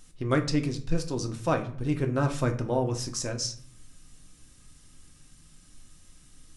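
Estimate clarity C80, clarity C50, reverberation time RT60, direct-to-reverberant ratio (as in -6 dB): 17.0 dB, 12.0 dB, 0.55 s, 4.0 dB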